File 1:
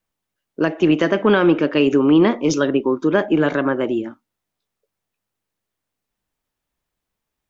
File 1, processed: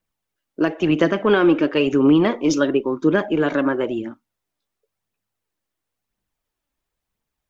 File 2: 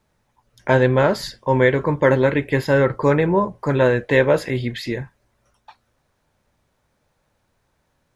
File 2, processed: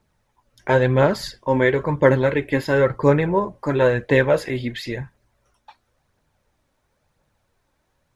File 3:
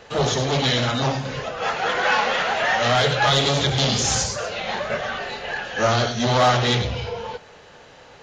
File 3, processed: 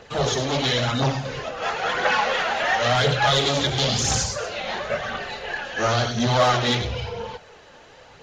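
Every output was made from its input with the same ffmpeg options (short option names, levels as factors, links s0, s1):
-af "aphaser=in_gain=1:out_gain=1:delay=3.8:decay=0.37:speed=0.97:type=triangular,volume=0.794"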